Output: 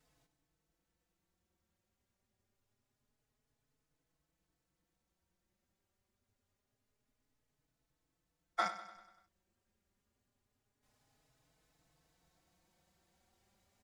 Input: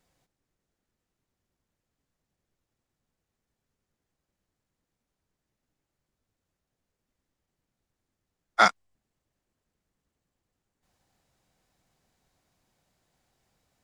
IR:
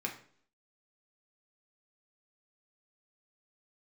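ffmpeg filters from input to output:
-filter_complex "[0:a]acompressor=threshold=-29dB:ratio=12,aecho=1:1:97|194|291|388|485|582:0.224|0.123|0.0677|0.0372|0.0205|0.0113,asplit=2[a][b];[b]adelay=4.2,afreqshift=0.26[c];[a][c]amix=inputs=2:normalize=1,volume=1dB"

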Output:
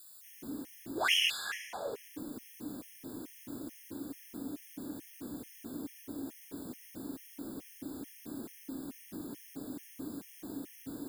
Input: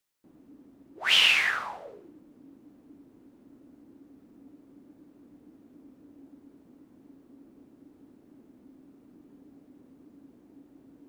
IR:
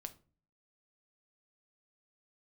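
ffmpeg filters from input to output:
-filter_complex "[0:a]crystalizer=i=6:c=0,acompressor=threshold=-45dB:ratio=4,asplit=2[a][b];[1:a]atrim=start_sample=2205,asetrate=29988,aresample=44100[c];[b][c]afir=irnorm=-1:irlink=0,volume=1dB[d];[a][d]amix=inputs=2:normalize=0,afftfilt=real='re*gt(sin(2*PI*2.3*pts/sr)*(1-2*mod(floor(b*sr/1024/1700),2)),0)':imag='im*gt(sin(2*PI*2.3*pts/sr)*(1-2*mod(floor(b*sr/1024/1700),2)),0)':win_size=1024:overlap=0.75,volume=7dB"

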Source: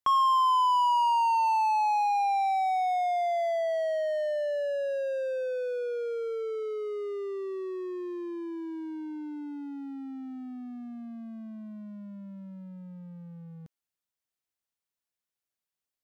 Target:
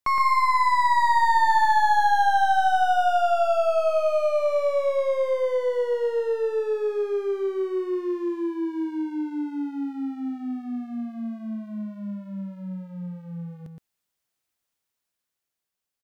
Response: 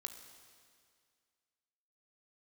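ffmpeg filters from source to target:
-filter_complex "[0:a]dynaudnorm=f=100:g=21:m=4dB,aeval=exprs='clip(val(0),-1,0.0398)':c=same,asplit=2[a][b];[b]aecho=0:1:118:0.562[c];[a][c]amix=inputs=2:normalize=0,volume=3.5dB"

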